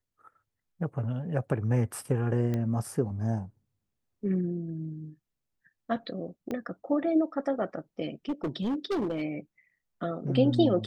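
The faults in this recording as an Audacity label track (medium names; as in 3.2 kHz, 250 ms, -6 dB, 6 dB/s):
2.540000	2.540000	pop -20 dBFS
6.510000	6.510000	pop -22 dBFS
8.290000	9.230000	clipped -26 dBFS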